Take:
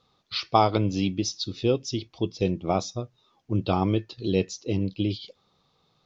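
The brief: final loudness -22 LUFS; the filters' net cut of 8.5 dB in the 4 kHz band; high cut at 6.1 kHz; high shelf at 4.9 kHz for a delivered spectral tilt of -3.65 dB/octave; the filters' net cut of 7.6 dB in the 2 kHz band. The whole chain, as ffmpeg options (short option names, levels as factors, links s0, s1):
-af "lowpass=6100,equalizer=f=2000:t=o:g=-7,equalizer=f=4000:t=o:g=-5,highshelf=f=4900:g=-5.5,volume=1.88"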